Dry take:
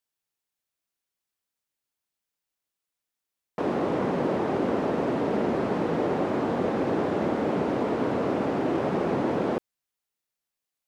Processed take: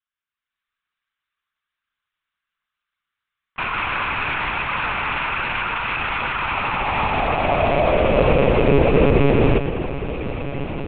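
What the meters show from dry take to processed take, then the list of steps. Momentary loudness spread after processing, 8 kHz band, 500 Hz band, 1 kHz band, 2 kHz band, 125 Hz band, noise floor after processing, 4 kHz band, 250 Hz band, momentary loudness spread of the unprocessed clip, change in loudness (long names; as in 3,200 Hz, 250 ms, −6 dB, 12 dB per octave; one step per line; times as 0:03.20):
11 LU, can't be measured, +6.5 dB, +9.0 dB, +16.0 dB, +11.5 dB, below −85 dBFS, +15.0 dB, +2.5 dB, 1 LU, +7.0 dB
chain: loose part that buzzes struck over −37 dBFS, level −22 dBFS
automatic gain control gain up to 9 dB
feedback delay with all-pass diffusion 1,251 ms, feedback 63%, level −11.5 dB
spring reverb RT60 3 s, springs 39/48 ms, DRR 10 dB
high-pass filter sweep 1,300 Hz → 180 Hz, 0:06.36–0:10.11
one-pitch LPC vocoder at 8 kHz 140 Hz
level −2 dB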